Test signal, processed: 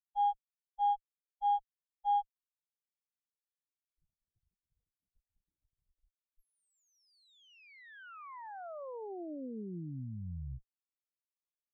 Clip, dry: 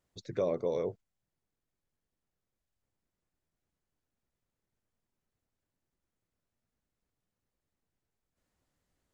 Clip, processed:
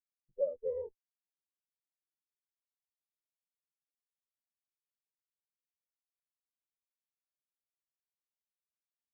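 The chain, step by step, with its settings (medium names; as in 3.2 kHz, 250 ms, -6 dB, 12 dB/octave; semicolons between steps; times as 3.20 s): Chebyshev shaper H 8 -10 dB, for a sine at -20.5 dBFS; spectral contrast expander 4:1; trim -4 dB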